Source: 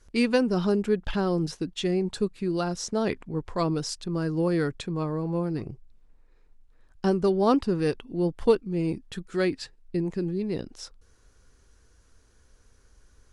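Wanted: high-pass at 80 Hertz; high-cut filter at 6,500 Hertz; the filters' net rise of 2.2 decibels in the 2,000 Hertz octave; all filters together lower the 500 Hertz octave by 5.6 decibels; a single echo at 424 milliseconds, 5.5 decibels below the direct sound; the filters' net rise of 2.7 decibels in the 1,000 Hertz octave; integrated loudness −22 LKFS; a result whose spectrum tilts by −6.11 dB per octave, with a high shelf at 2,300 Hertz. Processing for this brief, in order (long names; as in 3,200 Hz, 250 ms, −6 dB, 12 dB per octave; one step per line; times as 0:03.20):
high-pass filter 80 Hz
low-pass filter 6,500 Hz
parametric band 500 Hz −8.5 dB
parametric band 1,000 Hz +6.5 dB
parametric band 2,000 Hz +5.5 dB
high-shelf EQ 2,300 Hz −8.5 dB
single-tap delay 424 ms −5.5 dB
level +7 dB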